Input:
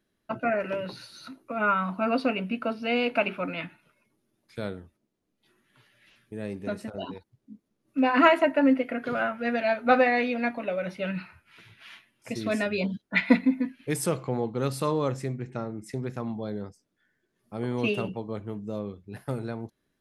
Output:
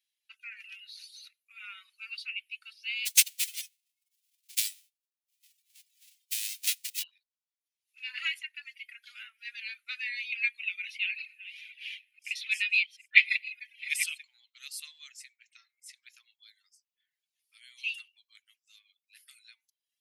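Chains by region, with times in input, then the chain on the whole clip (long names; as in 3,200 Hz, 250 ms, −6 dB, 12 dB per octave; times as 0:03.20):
0:03.05–0:07.02: spectral envelope flattened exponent 0.1 + transient designer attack +9 dB, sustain −5 dB
0:10.32–0:14.25: delay that plays each chunk backwards 468 ms, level −13.5 dB + parametric band 2,500 Hz +13 dB 0.96 octaves
whole clip: Butterworth high-pass 2,300 Hz 36 dB per octave; reverb reduction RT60 0.67 s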